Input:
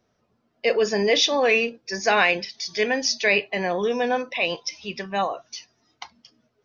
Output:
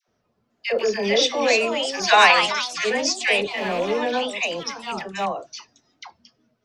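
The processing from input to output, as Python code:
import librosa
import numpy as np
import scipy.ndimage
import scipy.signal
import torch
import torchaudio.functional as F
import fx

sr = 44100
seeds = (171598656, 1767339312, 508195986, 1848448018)

y = fx.rattle_buzz(x, sr, strikes_db=-34.0, level_db=-22.0)
y = fx.graphic_eq_10(y, sr, hz=(250, 1000, 4000), db=(-7, 10, 11), at=(1.99, 2.41))
y = fx.echo_pitch(y, sr, ms=503, semitones=3, count=3, db_per_echo=-6.0)
y = fx.dispersion(y, sr, late='lows', ms=82.0, hz=830.0)
y = y * librosa.db_to_amplitude(-1.0)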